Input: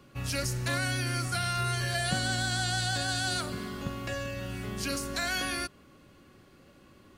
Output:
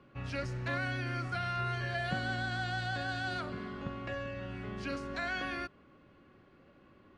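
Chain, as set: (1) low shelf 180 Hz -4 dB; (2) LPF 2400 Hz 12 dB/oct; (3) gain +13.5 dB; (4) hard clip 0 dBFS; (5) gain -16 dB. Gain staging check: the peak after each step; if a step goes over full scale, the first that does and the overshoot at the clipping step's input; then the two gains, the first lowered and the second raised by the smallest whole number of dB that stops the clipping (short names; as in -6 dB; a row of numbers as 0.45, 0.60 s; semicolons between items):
-17.0, -18.0, -4.5, -4.5, -20.5 dBFS; no overload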